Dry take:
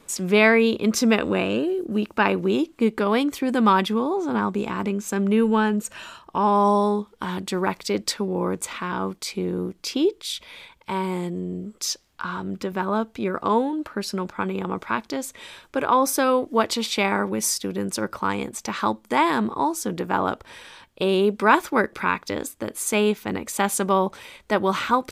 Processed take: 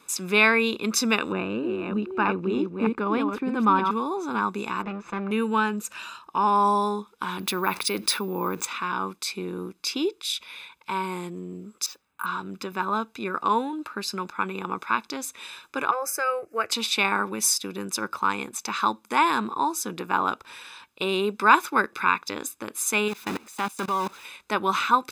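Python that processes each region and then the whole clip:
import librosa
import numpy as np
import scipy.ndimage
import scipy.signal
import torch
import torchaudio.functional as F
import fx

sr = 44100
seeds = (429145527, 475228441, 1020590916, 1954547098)

y = fx.chain(x, sr, fx.reverse_delay(ms=310, wet_db=-4.5),
    fx.lowpass(hz=1000.0, slope=6),
    fx.low_shelf(hz=120.0, db=11.0), at=(1.32, 3.91))
y = fx.chain(y, sr, fx.lower_of_two(delay_ms=5.9),
    fx.lowpass(hz=2200.0, slope=12), at=(4.82, 5.31))
y = fx.chain(y, sr, fx.resample_bad(factor=3, down='filtered', up='hold'),
    fx.env_flatten(amount_pct=50), at=(7.39, 8.65))
y = fx.chain(y, sr, fx.lowpass(hz=2200.0, slope=12),
    fx.resample_bad(factor=4, down='none', up='hold'),
    fx.notch_comb(f0_hz=350.0), at=(11.86, 12.26))
y = fx.chain(y, sr, fx.high_shelf(hz=6500.0, db=-4.5),
    fx.fixed_phaser(hz=970.0, stages=6), at=(15.91, 16.72))
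y = fx.chain(y, sr, fx.zero_step(step_db=-23.5),
    fx.high_shelf(hz=7400.0, db=-6.0),
    fx.level_steps(step_db=23), at=(23.08, 24.25))
y = fx.highpass(y, sr, hz=600.0, slope=6)
y = y + 0.56 * np.pad(y, (int(0.8 * sr / 1000.0), 0))[:len(y)]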